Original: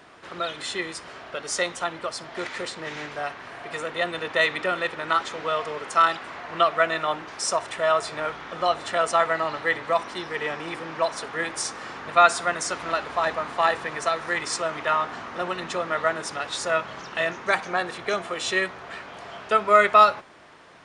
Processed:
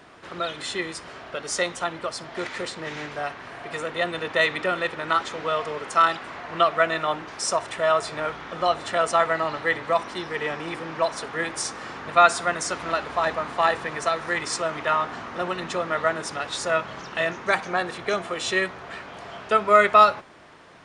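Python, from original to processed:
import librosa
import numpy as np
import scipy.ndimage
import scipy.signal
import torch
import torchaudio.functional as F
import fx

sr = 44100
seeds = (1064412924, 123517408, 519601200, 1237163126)

y = fx.low_shelf(x, sr, hz=320.0, db=4.0)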